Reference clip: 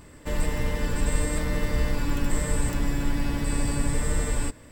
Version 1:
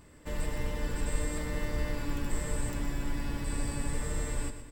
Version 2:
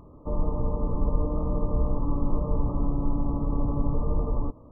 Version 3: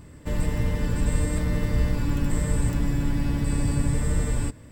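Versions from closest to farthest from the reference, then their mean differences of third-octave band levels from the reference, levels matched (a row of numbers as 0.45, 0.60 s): 1, 3, 2; 1.0, 5.0, 17.0 dB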